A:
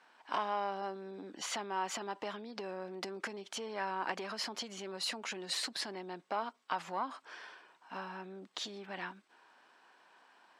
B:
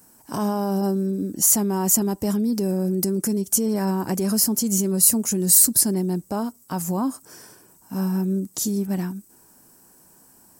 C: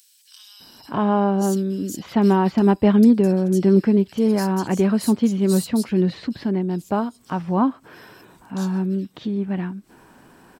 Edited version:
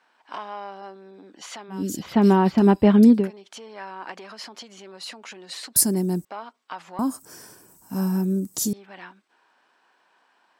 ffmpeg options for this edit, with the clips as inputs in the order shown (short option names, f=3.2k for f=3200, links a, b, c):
-filter_complex "[1:a]asplit=2[a][b];[0:a]asplit=4[c][d][e][f];[c]atrim=end=1.84[g];[2:a]atrim=start=1.68:end=3.31[h];[d]atrim=start=3.15:end=5.762[i];[a]atrim=start=5.758:end=6.252[j];[e]atrim=start=6.248:end=6.992[k];[b]atrim=start=6.988:end=8.732[l];[f]atrim=start=8.728[m];[g][h]acrossfade=d=0.16:c1=tri:c2=tri[n];[n][i]acrossfade=d=0.16:c1=tri:c2=tri[o];[o][j]acrossfade=d=0.004:c1=hsin:c2=hsin[p];[p][k]acrossfade=d=0.004:c1=hsin:c2=hsin[q];[q][l]acrossfade=d=0.004:c1=hsin:c2=hsin[r];[r][m]acrossfade=d=0.004:c1=hsin:c2=hsin"